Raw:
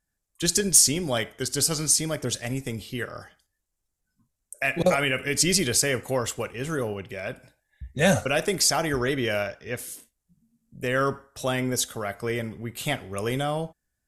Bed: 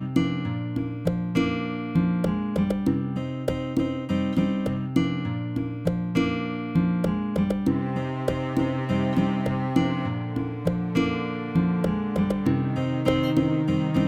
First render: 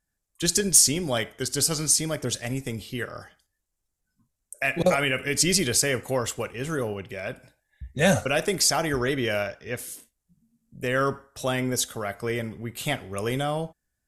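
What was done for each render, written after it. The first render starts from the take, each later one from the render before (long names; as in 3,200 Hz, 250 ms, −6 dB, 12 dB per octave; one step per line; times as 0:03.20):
no processing that can be heard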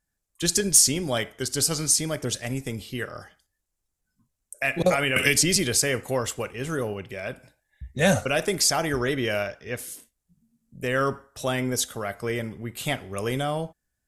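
0:05.16–0:05.56: multiband upward and downward compressor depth 100%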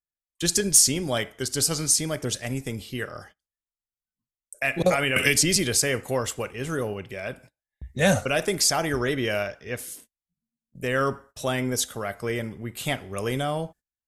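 noise gate −48 dBFS, range −22 dB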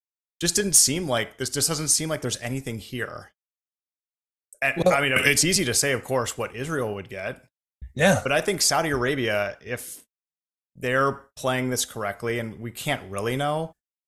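downward expander −41 dBFS
dynamic equaliser 1,100 Hz, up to +4 dB, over −36 dBFS, Q 0.7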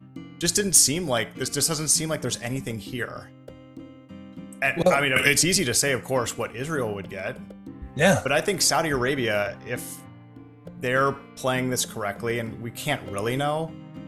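mix in bed −17.5 dB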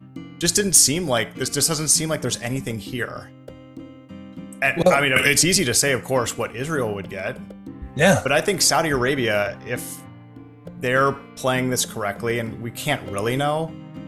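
level +3.5 dB
brickwall limiter −3 dBFS, peak gain reduction 2.5 dB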